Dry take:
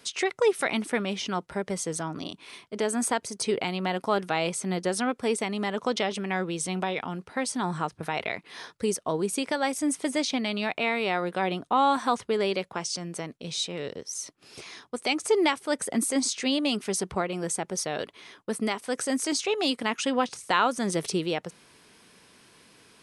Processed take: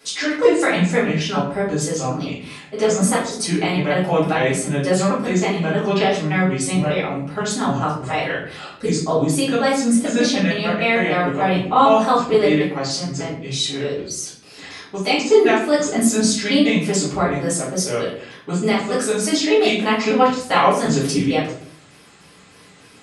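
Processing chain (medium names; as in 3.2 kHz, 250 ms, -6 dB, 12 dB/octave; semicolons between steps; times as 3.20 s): pitch shift switched off and on -4 st, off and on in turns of 150 ms; high-pass 56 Hz; simulated room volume 72 m³, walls mixed, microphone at 2.3 m; trim -1 dB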